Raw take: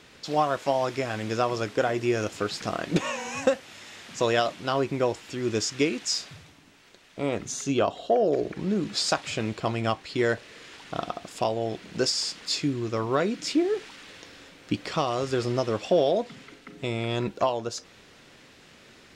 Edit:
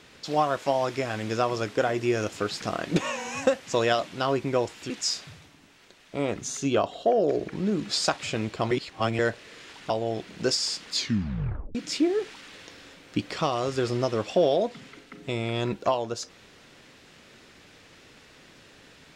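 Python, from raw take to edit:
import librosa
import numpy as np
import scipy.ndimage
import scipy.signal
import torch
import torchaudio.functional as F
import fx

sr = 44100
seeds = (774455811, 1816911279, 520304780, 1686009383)

y = fx.edit(x, sr, fx.cut(start_s=3.67, length_s=0.47),
    fx.cut(start_s=5.37, length_s=0.57),
    fx.reverse_span(start_s=9.75, length_s=0.48),
    fx.cut(start_s=10.94, length_s=0.51),
    fx.tape_stop(start_s=12.5, length_s=0.8), tone=tone)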